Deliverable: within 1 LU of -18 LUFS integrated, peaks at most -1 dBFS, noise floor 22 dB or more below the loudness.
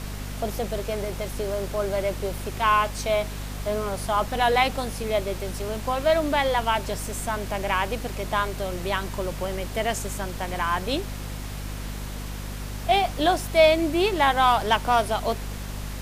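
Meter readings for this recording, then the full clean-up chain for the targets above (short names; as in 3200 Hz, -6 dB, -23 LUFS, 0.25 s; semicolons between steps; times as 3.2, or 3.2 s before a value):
hum 50 Hz; harmonics up to 250 Hz; hum level -31 dBFS; noise floor -34 dBFS; noise floor target -48 dBFS; loudness -25.5 LUFS; peak -7.0 dBFS; loudness target -18.0 LUFS
-> de-hum 50 Hz, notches 5; noise print and reduce 14 dB; gain +7.5 dB; limiter -1 dBFS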